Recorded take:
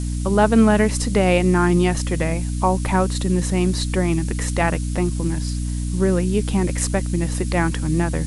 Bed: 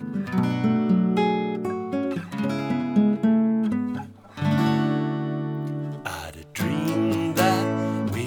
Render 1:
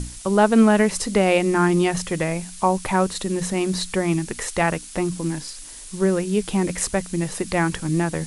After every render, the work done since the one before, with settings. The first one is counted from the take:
mains-hum notches 60/120/180/240/300 Hz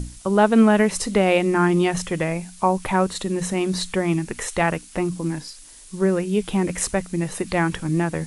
noise reduction from a noise print 6 dB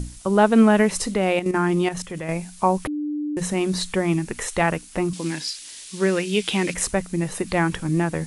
0:01.12–0:02.29: output level in coarse steps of 10 dB
0:02.87–0:03.37: beep over 297 Hz −23.5 dBFS
0:05.13–0:06.74: meter weighting curve D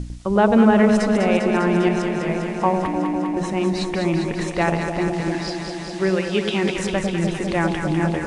high-frequency loss of the air 97 metres
delay that swaps between a low-pass and a high-pass 100 ms, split 840 Hz, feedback 89%, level −5 dB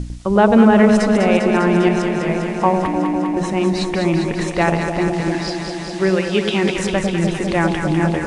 level +3.5 dB
brickwall limiter −1 dBFS, peak gain reduction 1.5 dB

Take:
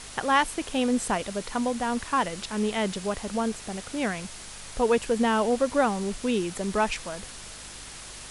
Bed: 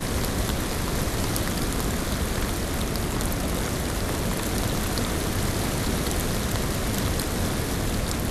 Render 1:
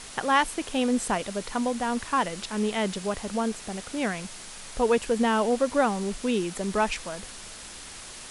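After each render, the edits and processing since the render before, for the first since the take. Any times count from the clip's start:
hum removal 50 Hz, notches 3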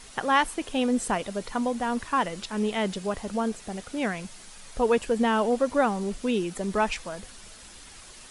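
broadband denoise 7 dB, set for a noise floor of −42 dBFS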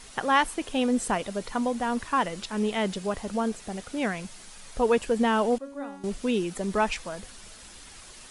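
0:05.58–0:06.04: tuned comb filter 280 Hz, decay 0.82 s, mix 90%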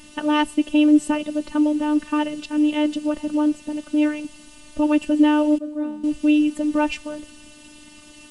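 phases set to zero 299 Hz
hollow resonant body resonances 210/2,800 Hz, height 17 dB, ringing for 20 ms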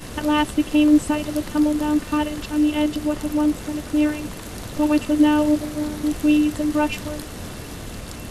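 mix in bed −8 dB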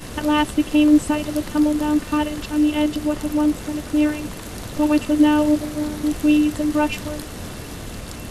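level +1 dB

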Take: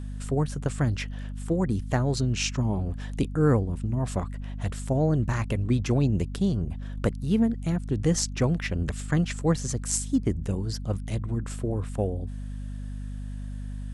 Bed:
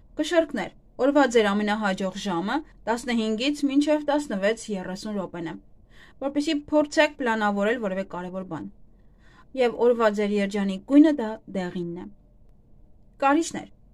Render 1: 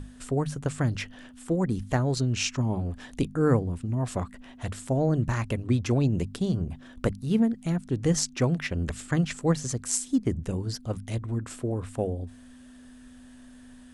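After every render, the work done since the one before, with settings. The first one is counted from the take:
mains-hum notches 50/100/150/200 Hz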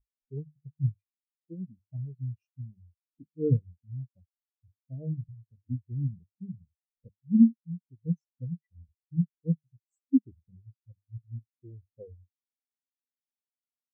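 speech leveller within 3 dB 2 s
every bin expanded away from the loudest bin 4 to 1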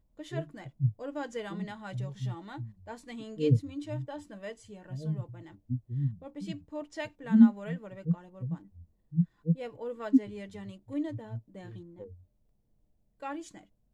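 mix in bed −18 dB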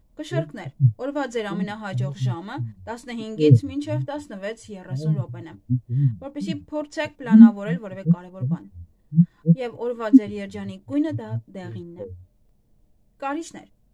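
level +10.5 dB
brickwall limiter −1 dBFS, peak gain reduction 2 dB

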